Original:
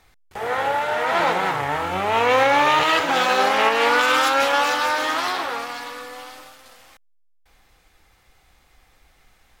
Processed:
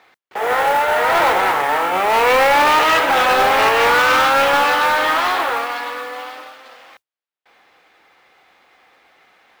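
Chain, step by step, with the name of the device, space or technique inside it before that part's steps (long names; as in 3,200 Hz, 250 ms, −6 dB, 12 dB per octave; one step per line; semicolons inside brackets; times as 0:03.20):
carbon microphone (band-pass filter 350–3,200 Hz; soft clipping −17.5 dBFS, distortion −12 dB; noise that follows the level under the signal 21 dB)
level +8.5 dB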